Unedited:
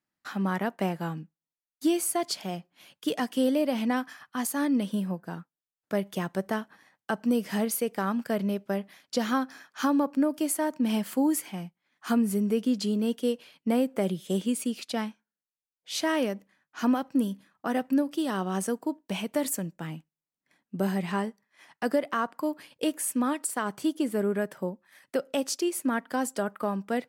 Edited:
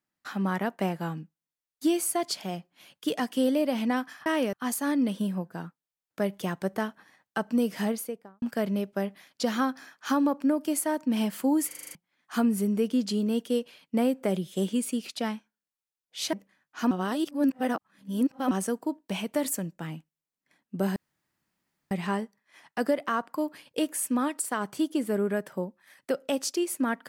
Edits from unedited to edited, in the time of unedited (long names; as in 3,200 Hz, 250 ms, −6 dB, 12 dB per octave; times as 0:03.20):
0:07.51–0:08.15: fade out and dull
0:11.40: stutter in place 0.04 s, 7 plays
0:16.06–0:16.33: move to 0:04.26
0:16.91–0:18.51: reverse
0:20.96: splice in room tone 0.95 s